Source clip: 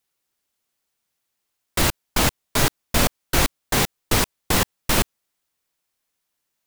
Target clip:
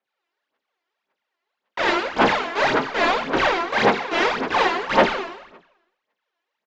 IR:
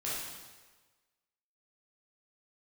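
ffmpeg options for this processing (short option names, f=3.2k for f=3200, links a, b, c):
-filter_complex "[0:a]aresample=16000,aresample=44100[a];[1:a]atrim=start_sample=2205,asetrate=61740,aresample=44100[b];[a][b]afir=irnorm=-1:irlink=0,aphaser=in_gain=1:out_gain=1:delay=3:decay=0.71:speed=1.8:type=sinusoidal,acrossover=split=210 4400:gain=0.0708 1 0.141[c][d][e];[c][d][e]amix=inputs=3:normalize=0,asplit=2[f][g];[g]highpass=f=720:p=1,volume=11dB,asoftclip=type=tanh:threshold=-1.5dB[h];[f][h]amix=inputs=2:normalize=0,lowpass=f=1.3k:p=1,volume=-6dB"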